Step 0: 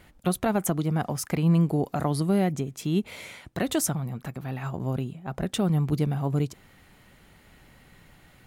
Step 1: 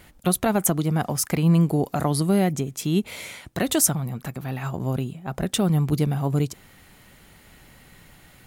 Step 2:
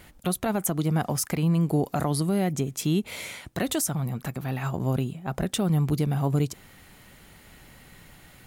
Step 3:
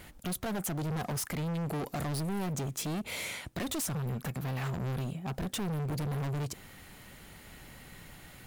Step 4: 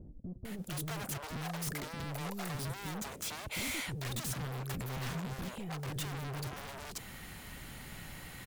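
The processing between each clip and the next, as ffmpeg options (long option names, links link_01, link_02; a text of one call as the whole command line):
ffmpeg -i in.wav -af "highshelf=frequency=4800:gain=7,volume=3dB" out.wav
ffmpeg -i in.wav -af "alimiter=limit=-15.5dB:level=0:latency=1:release=165" out.wav
ffmpeg -i in.wav -af "asoftclip=type=hard:threshold=-32dB" out.wav
ffmpeg -i in.wav -filter_complex "[0:a]aeval=exprs='0.0158*(abs(mod(val(0)/0.0158+3,4)-2)-1)':channel_layout=same,acrossover=split=450[link_01][link_02];[link_02]adelay=450[link_03];[link_01][link_03]amix=inputs=2:normalize=0,volume=3.5dB" out.wav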